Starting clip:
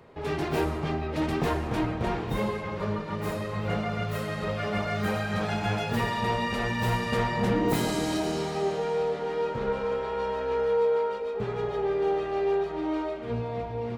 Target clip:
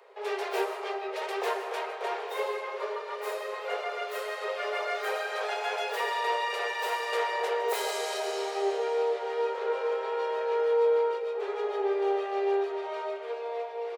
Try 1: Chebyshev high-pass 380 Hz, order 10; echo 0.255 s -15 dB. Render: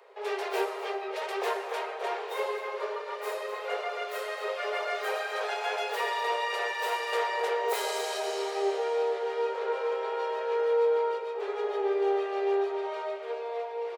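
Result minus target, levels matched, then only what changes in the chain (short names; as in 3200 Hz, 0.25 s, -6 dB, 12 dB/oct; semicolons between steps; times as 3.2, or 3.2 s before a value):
echo 99 ms late
change: echo 0.156 s -15 dB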